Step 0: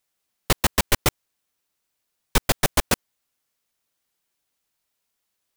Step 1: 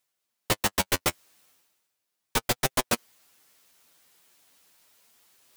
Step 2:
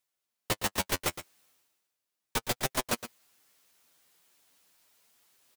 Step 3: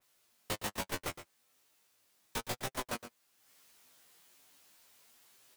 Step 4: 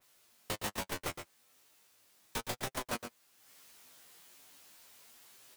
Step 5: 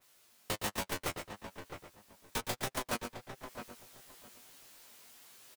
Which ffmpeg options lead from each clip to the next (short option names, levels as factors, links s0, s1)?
-af "lowshelf=f=87:g=-11.5,areverse,acompressor=mode=upward:threshold=0.00891:ratio=2.5,areverse,flanger=delay=7.5:depth=5.1:regen=23:speed=0.37:shape=triangular"
-af "aecho=1:1:115:0.251,volume=0.562"
-af "acompressor=mode=upward:threshold=0.00447:ratio=2.5,flanger=delay=17.5:depth=3.6:speed=1.1,adynamicequalizer=threshold=0.00398:dfrequency=2300:dqfactor=0.7:tfrequency=2300:tqfactor=0.7:attack=5:release=100:ratio=0.375:range=2.5:mode=cutabove:tftype=highshelf,volume=0.708"
-af "alimiter=level_in=1.88:limit=0.0631:level=0:latency=1:release=131,volume=0.531,volume=1.78"
-filter_complex "[0:a]asplit=2[s0][s1];[s1]adelay=662,lowpass=f=1900:p=1,volume=0.398,asplit=2[s2][s3];[s3]adelay=662,lowpass=f=1900:p=1,volume=0.21,asplit=2[s4][s5];[s5]adelay=662,lowpass=f=1900:p=1,volume=0.21[s6];[s0][s2][s4][s6]amix=inputs=4:normalize=0,volume=1.19"